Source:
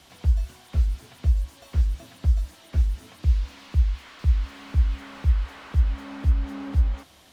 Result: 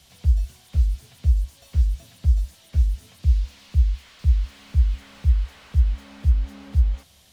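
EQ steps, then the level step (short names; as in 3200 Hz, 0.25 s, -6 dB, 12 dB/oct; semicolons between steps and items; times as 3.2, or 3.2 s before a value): bell 300 Hz -12.5 dB 0.64 oct; bell 1100 Hz -10.5 dB 2.4 oct; +2.5 dB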